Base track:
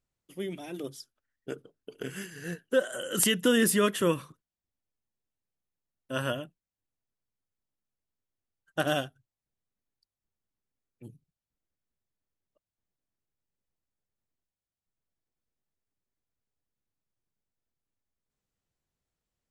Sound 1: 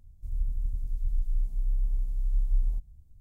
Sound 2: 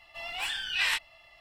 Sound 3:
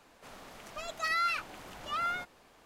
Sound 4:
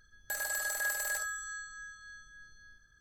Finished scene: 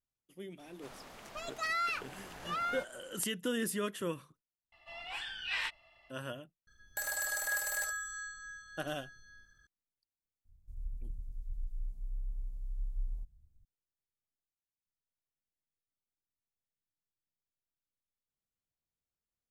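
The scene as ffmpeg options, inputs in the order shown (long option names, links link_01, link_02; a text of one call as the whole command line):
ffmpeg -i bed.wav -i cue0.wav -i cue1.wav -i cue2.wav -i cue3.wav -filter_complex "[0:a]volume=-11dB[link_01];[3:a]asoftclip=type=tanh:threshold=-23.5dB[link_02];[2:a]aemphasis=mode=reproduction:type=50kf[link_03];[link_02]atrim=end=2.65,asetpts=PTS-STARTPTS,volume=-2dB,afade=type=in:duration=0.004:curve=hsin,afade=type=out:start_time=2.646:duration=0.004:curve=hsin,adelay=590[link_04];[link_03]atrim=end=1.4,asetpts=PTS-STARTPTS,volume=-6dB,afade=type=in:duration=0.004:curve=hsin,afade=type=out:start_time=1.396:duration=0.004:curve=hsin,adelay=4720[link_05];[4:a]atrim=end=3,asetpts=PTS-STARTPTS,volume=-1dB,afade=type=in:duration=0.004:curve=hsin,afade=type=out:start_time=2.996:duration=0.004:curve=hsin,adelay=6670[link_06];[1:a]atrim=end=3.2,asetpts=PTS-STARTPTS,volume=-11.5dB,afade=type=in:duration=0.004:curve=hsin,afade=type=out:start_time=3.196:duration=0.004:curve=hsin,adelay=10450[link_07];[link_01][link_04][link_05][link_06][link_07]amix=inputs=5:normalize=0" out.wav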